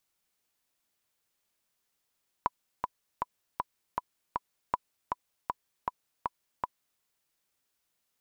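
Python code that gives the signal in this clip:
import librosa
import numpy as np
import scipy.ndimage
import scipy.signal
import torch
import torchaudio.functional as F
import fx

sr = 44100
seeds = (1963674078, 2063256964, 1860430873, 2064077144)

y = fx.click_track(sr, bpm=158, beats=6, bars=2, hz=992.0, accent_db=4.0, level_db=-12.5)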